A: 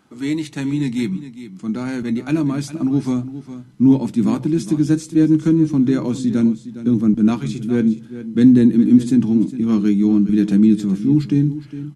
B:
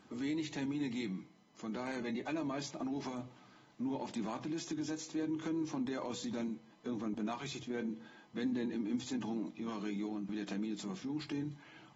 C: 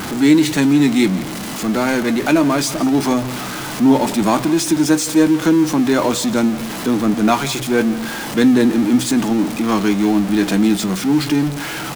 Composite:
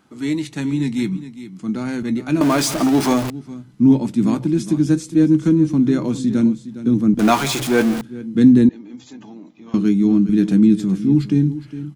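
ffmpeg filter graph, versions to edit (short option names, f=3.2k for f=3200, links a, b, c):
-filter_complex "[2:a]asplit=2[a][b];[0:a]asplit=4[c][d][e][f];[c]atrim=end=2.412[g];[a]atrim=start=2.408:end=3.302[h];[d]atrim=start=3.298:end=7.192[i];[b]atrim=start=7.188:end=8.012[j];[e]atrim=start=8.008:end=8.692[k];[1:a]atrim=start=8.688:end=9.742[l];[f]atrim=start=9.738[m];[g][h]acrossfade=d=0.004:c1=hsin:c2=hsin[n];[n][i]acrossfade=d=0.004:c1=hsin:c2=hsin[o];[o][j]acrossfade=d=0.004:c1=hsin:c2=hsin[p];[p][k]acrossfade=d=0.004:c1=hsin:c2=hsin[q];[q][l]acrossfade=d=0.004:c1=hsin:c2=hsin[r];[r][m]acrossfade=d=0.004:c1=hsin:c2=hsin"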